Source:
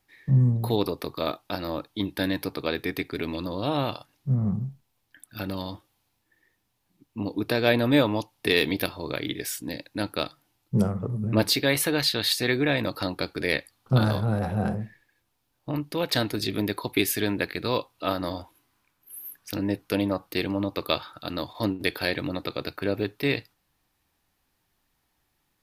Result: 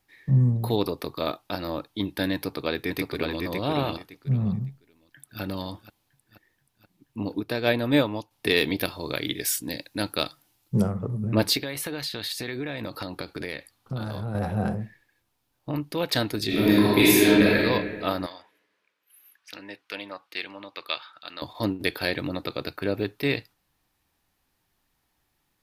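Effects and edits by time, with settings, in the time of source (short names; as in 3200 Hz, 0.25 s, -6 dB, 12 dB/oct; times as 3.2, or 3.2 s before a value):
2.34–3.41 echo throw 0.56 s, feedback 20%, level -3.5 dB
4.69–5.41 echo throw 0.48 s, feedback 60%, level -14.5 dB
7.4–8.31 upward expander, over -34 dBFS
8.88–10.8 high shelf 3600 Hz +7.5 dB
11.57–14.35 compressor, threshold -28 dBFS
16.46–17.57 reverb throw, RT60 1.6 s, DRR -8 dB
18.26–21.42 band-pass 2400 Hz, Q 0.89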